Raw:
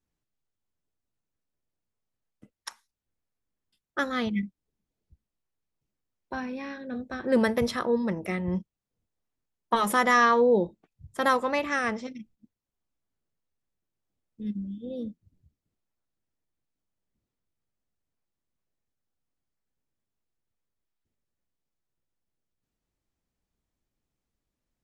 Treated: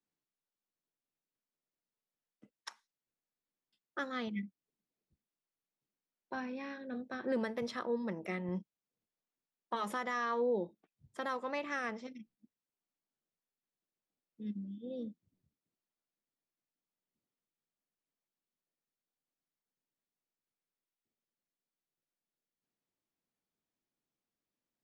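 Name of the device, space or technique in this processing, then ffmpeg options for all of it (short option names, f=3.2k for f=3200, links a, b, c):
DJ mixer with the lows and highs turned down: -filter_complex "[0:a]acrossover=split=150 7100:gain=0.112 1 0.224[a][b][c];[a][b][c]amix=inputs=3:normalize=0,alimiter=limit=-19dB:level=0:latency=1:release=495,volume=-6dB"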